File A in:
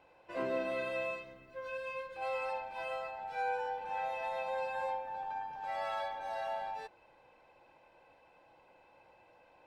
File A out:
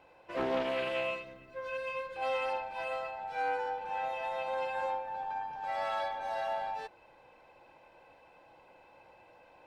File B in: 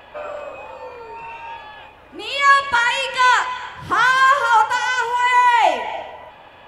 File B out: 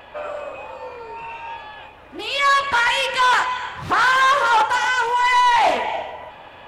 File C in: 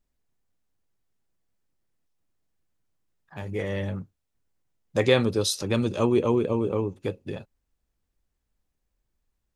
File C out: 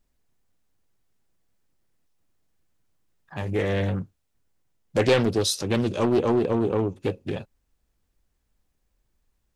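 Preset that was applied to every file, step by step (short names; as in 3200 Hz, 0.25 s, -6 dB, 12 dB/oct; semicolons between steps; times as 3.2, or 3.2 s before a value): vocal rider within 3 dB 2 s; soft clip -14 dBFS; Doppler distortion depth 0.4 ms; gain +2.5 dB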